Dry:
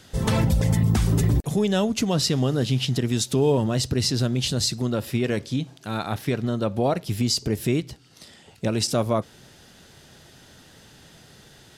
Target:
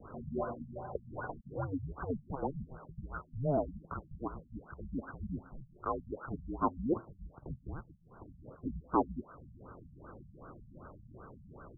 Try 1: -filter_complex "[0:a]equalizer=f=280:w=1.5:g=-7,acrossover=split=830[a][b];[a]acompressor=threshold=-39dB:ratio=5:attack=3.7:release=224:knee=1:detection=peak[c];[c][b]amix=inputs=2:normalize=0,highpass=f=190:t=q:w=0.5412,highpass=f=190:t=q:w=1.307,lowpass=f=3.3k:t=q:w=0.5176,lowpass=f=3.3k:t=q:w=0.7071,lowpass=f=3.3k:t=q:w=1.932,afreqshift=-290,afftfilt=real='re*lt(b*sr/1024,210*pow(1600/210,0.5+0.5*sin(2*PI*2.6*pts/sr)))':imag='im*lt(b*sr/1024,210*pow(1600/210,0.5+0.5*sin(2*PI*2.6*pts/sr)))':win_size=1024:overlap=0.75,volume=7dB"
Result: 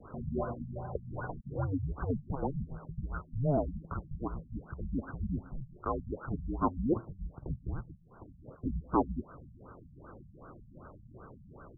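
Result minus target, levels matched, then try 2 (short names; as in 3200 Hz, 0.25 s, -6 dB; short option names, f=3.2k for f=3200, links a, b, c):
compressor: peak gain reduction -9 dB
-filter_complex "[0:a]equalizer=f=280:w=1.5:g=-7,acrossover=split=830[a][b];[a]acompressor=threshold=-50dB:ratio=5:attack=3.7:release=224:knee=1:detection=peak[c];[c][b]amix=inputs=2:normalize=0,highpass=f=190:t=q:w=0.5412,highpass=f=190:t=q:w=1.307,lowpass=f=3.3k:t=q:w=0.5176,lowpass=f=3.3k:t=q:w=0.7071,lowpass=f=3.3k:t=q:w=1.932,afreqshift=-290,afftfilt=real='re*lt(b*sr/1024,210*pow(1600/210,0.5+0.5*sin(2*PI*2.6*pts/sr)))':imag='im*lt(b*sr/1024,210*pow(1600/210,0.5+0.5*sin(2*PI*2.6*pts/sr)))':win_size=1024:overlap=0.75,volume=7dB"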